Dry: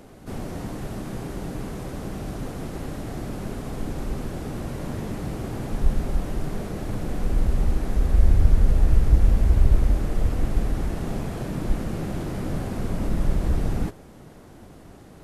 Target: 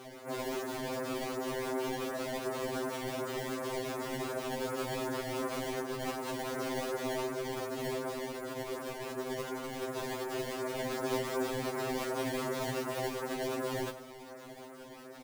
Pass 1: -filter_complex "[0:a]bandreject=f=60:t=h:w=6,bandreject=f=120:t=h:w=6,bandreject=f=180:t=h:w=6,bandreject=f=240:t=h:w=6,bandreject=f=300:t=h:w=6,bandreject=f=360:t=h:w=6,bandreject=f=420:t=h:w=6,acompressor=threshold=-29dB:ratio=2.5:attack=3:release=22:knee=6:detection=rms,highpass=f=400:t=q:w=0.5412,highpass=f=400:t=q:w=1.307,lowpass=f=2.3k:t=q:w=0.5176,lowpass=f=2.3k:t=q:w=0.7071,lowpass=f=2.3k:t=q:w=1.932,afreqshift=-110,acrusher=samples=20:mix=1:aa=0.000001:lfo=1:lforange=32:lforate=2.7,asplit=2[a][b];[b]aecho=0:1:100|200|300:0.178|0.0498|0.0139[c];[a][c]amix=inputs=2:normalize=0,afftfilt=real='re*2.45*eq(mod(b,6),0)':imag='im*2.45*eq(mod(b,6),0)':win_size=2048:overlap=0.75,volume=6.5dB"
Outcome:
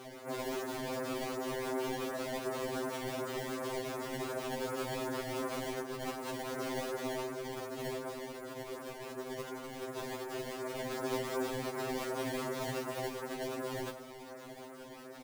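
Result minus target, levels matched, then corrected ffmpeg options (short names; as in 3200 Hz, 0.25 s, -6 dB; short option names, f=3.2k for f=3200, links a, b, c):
compressor: peak gain reduction +4.5 dB
-filter_complex "[0:a]bandreject=f=60:t=h:w=6,bandreject=f=120:t=h:w=6,bandreject=f=180:t=h:w=6,bandreject=f=240:t=h:w=6,bandreject=f=300:t=h:w=6,bandreject=f=360:t=h:w=6,bandreject=f=420:t=h:w=6,acompressor=threshold=-21.5dB:ratio=2.5:attack=3:release=22:knee=6:detection=rms,highpass=f=400:t=q:w=0.5412,highpass=f=400:t=q:w=1.307,lowpass=f=2.3k:t=q:w=0.5176,lowpass=f=2.3k:t=q:w=0.7071,lowpass=f=2.3k:t=q:w=1.932,afreqshift=-110,acrusher=samples=20:mix=1:aa=0.000001:lfo=1:lforange=32:lforate=2.7,asplit=2[a][b];[b]aecho=0:1:100|200|300:0.178|0.0498|0.0139[c];[a][c]amix=inputs=2:normalize=0,afftfilt=real='re*2.45*eq(mod(b,6),0)':imag='im*2.45*eq(mod(b,6),0)':win_size=2048:overlap=0.75,volume=6.5dB"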